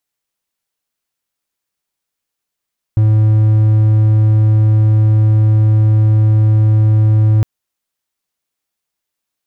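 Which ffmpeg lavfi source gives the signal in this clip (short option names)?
-f lavfi -i "aevalsrc='0.562*(1-4*abs(mod(108*t+0.25,1)-0.5))':d=4.46:s=44100"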